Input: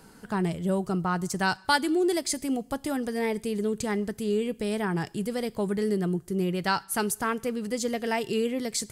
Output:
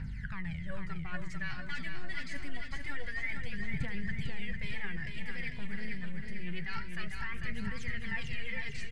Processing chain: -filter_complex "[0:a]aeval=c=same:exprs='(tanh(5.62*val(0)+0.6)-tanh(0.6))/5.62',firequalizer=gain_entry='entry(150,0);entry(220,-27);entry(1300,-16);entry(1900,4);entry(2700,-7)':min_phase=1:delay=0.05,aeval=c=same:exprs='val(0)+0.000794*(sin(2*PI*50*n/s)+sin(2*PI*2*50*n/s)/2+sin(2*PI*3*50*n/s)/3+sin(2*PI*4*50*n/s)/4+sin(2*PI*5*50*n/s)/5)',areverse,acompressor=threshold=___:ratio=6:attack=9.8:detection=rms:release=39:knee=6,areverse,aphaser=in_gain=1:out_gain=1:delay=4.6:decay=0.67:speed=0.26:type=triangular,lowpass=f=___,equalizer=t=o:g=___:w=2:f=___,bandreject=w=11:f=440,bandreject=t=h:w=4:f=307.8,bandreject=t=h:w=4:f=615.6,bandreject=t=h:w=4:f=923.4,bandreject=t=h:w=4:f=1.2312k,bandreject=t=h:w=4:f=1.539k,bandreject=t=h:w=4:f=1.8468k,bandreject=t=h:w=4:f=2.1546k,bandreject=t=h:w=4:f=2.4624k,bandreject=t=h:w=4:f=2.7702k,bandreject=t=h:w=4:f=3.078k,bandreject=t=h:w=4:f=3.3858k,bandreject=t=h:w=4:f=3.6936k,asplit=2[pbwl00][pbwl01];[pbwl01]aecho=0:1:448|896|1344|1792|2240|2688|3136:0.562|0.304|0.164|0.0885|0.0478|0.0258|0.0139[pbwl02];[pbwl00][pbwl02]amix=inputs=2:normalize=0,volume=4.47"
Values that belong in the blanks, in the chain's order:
0.00251, 2.7k, -2.5, 740